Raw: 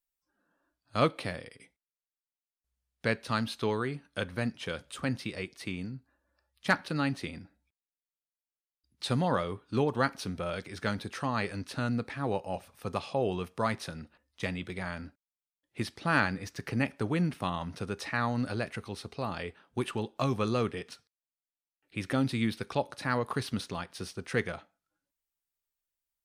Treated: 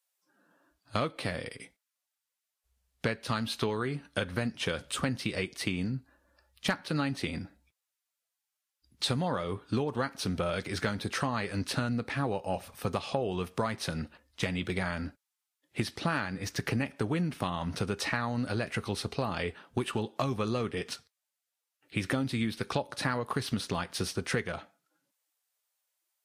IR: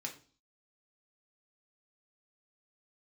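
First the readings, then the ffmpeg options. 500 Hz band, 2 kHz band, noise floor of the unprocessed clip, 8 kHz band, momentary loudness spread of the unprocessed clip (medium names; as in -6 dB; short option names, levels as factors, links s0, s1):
-0.5 dB, -0.5 dB, under -85 dBFS, +6.0 dB, 11 LU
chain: -af "acompressor=threshold=0.0178:ratio=10,volume=2.66" -ar 44100 -c:a libvorbis -b:a 48k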